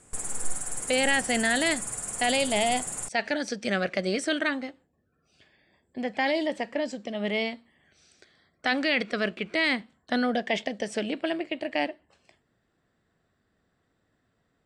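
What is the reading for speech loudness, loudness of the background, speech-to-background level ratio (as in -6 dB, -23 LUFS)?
-28.0 LUFS, -32.5 LUFS, 4.5 dB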